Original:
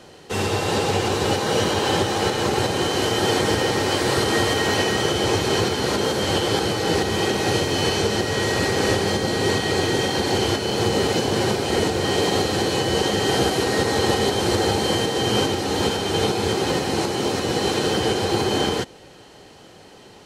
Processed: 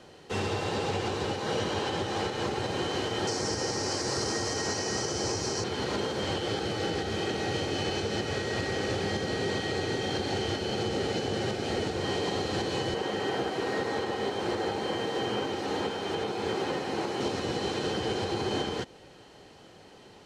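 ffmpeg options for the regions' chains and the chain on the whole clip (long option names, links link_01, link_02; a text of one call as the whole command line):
ffmpeg -i in.wav -filter_complex "[0:a]asettb=1/sr,asplit=3[link_01][link_02][link_03];[link_01]atrim=end=3.274[link_04];[link_02]atrim=start=3.27:end=5.64,asetpts=PTS-STARTPTS,afade=type=in:duration=0.004:curve=qsin,afade=type=out:start_time=2.366:duration=0.004:curve=qsin,lowpass=12000,highshelf=frequency=4300:width_type=q:width=3:gain=7.5[link_05];[link_03]atrim=start=5.636[link_06];[link_04][link_05]acrossfade=duration=0.004:curve1=hsin:curve2=qsin[link_07];[link_07][link_06]acrossfade=duration=0.004:curve1=qsin:curve2=hsin,asettb=1/sr,asplit=3[link_08][link_09][link_10];[link_08]atrim=end=6.384[link_11];[link_09]atrim=start=6.38:end=11.93,asetpts=PTS-STARTPTS,afade=type=in:duration=0.004:curve=qsin,afade=type=out:start_time=5.546:duration=0.004:curve=qsin,bandreject=frequency=1000:width=7.4,aecho=1:1:420:0.355,atrim=end_sample=244755[link_12];[link_10]atrim=start=11.926[link_13];[link_11][link_12]acrossfade=duration=0.004:curve1=hsin:curve2=qsin[link_14];[link_14][link_13]acrossfade=duration=0.004:curve1=qsin:curve2=hsin,asettb=1/sr,asplit=3[link_15][link_16][link_17];[link_15]atrim=end=12.944[link_18];[link_16]atrim=start=12.94:end=17.21,asetpts=PTS-STARTPTS,afade=type=in:duration=0.004:curve=qsin,afade=type=out:start_time=4.266:duration=0.004:curve=qsin,acrossover=split=2700[link_19][link_20];[link_20]acompressor=threshold=-34dB:ratio=4:attack=1:release=60[link_21];[link_19][link_21]amix=inputs=2:normalize=0,acrusher=bits=8:mode=log:mix=0:aa=0.000001,highpass=frequency=240:poles=1[link_22];[link_17]atrim=start=17.206[link_23];[link_18][link_22]acrossfade=duration=0.004:curve1=hsin:curve2=qsin[link_24];[link_24][link_23]acrossfade=duration=0.004:curve1=qsin:curve2=hsin,acrossover=split=8900[link_25][link_26];[link_26]acompressor=threshold=-53dB:ratio=4:attack=1:release=60[link_27];[link_25][link_27]amix=inputs=2:normalize=0,highshelf=frequency=10000:gain=-10.5,alimiter=limit=-14.5dB:level=0:latency=1:release=268,volume=-6dB" out.wav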